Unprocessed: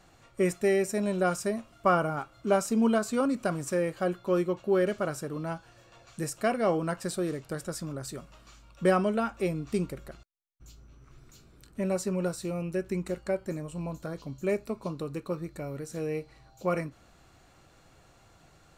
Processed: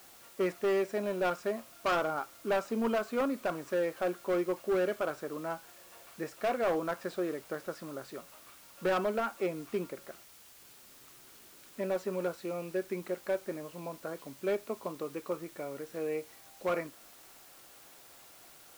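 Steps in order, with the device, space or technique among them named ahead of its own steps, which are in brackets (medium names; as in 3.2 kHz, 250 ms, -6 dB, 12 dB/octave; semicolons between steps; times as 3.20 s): aircraft radio (band-pass 340–2600 Hz; hard clipper -25 dBFS, distortion -10 dB; white noise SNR 21 dB)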